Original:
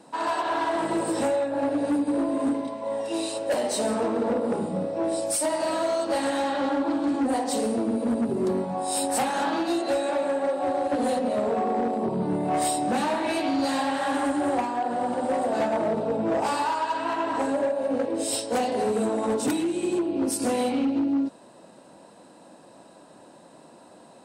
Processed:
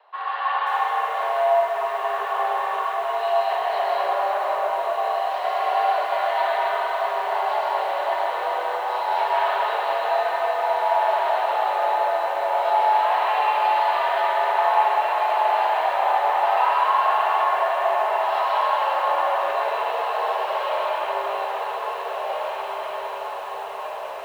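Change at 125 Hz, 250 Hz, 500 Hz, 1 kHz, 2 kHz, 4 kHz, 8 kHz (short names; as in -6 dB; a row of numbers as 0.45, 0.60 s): under -25 dB, under -25 dB, +2.0 dB, +9.5 dB, +8.0 dB, +2.5 dB, under -15 dB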